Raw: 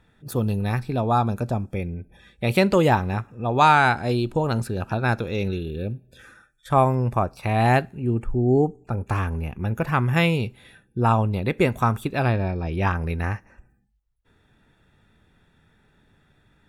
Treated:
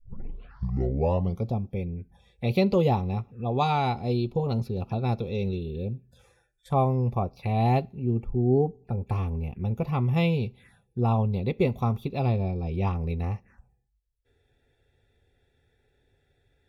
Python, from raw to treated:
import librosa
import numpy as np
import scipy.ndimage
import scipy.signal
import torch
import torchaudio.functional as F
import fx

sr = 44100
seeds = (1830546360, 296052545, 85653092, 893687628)

y = fx.tape_start_head(x, sr, length_s=1.53)
y = fx.high_shelf(y, sr, hz=4900.0, db=-6.0)
y = fx.env_phaser(y, sr, low_hz=180.0, high_hz=1600.0, full_db=-25.5)
y = fx.peak_eq(y, sr, hz=3000.0, db=-4.0, octaves=0.28)
y = fx.notch_comb(y, sr, f0_hz=310.0)
y = y * 10.0 ** (-2.0 / 20.0)